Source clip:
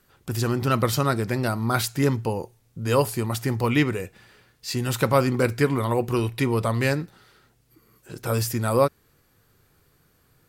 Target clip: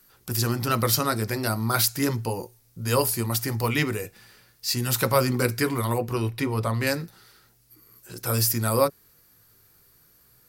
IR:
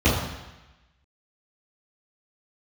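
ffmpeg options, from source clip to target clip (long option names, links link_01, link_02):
-filter_complex "[0:a]asettb=1/sr,asplit=3[link_01][link_02][link_03];[link_01]atrim=end=5.984[link_04];[link_02]atrim=start=5.98:end=6.87,asetpts=PTS-STARTPTS,afade=type=in:duration=0.004:curve=qsin,afade=type=out:start_time=0.886:duration=0.004:curve=qsin,highshelf=frequency=4200:gain=-10.5[link_05];[link_03]atrim=start=6.866[link_06];[link_04][link_05]acrossfade=duration=0.004:curve1=hsin:curve2=qsin[link_07];[link_07][link_06]acrossfade=duration=0.004:curve1=qsin:curve2=hsin,acrossover=split=890[link_08][link_09];[link_08]flanger=delay=16.5:depth=2.1:speed=0.38[link_10];[link_09]aexciter=amount=1.4:drive=8.2:freq=4400[link_11];[link_10][link_11]amix=inputs=2:normalize=0"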